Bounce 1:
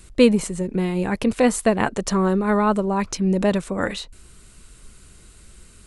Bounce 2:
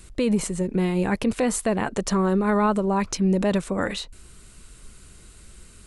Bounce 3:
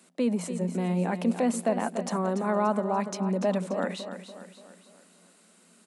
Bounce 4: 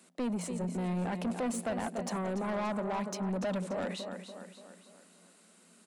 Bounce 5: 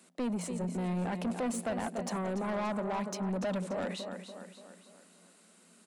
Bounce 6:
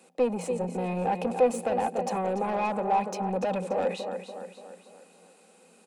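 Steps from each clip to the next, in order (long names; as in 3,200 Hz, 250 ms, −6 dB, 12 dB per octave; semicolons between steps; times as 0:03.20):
brickwall limiter −13.5 dBFS, peak gain reduction 11 dB
Chebyshev high-pass with heavy ripple 170 Hz, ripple 9 dB; on a send: repeating echo 289 ms, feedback 47%, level −10.5 dB
soft clipping −27 dBFS, distortion −9 dB; level −2 dB
no processing that can be heard
hollow resonant body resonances 500/780/2,500 Hz, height 16 dB, ringing for 40 ms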